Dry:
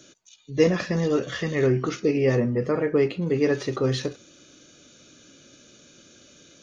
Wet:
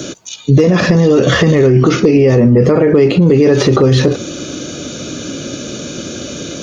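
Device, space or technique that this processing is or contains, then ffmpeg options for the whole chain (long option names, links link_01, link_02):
mastering chain: -filter_complex "[0:a]highpass=46,equalizer=frequency=1800:width_type=o:width=0.77:gain=-3.5,acrossover=split=2200|4700[link_01][link_02][link_03];[link_01]acompressor=threshold=-25dB:ratio=4[link_04];[link_02]acompressor=threshold=-44dB:ratio=4[link_05];[link_03]acompressor=threshold=-49dB:ratio=4[link_06];[link_04][link_05][link_06]amix=inputs=3:normalize=0,acompressor=threshold=-31dB:ratio=2,tiltshelf=frequency=1300:gain=3.5,asoftclip=type=hard:threshold=-20dB,alimiter=level_in=28.5dB:limit=-1dB:release=50:level=0:latency=1,volume=-1dB"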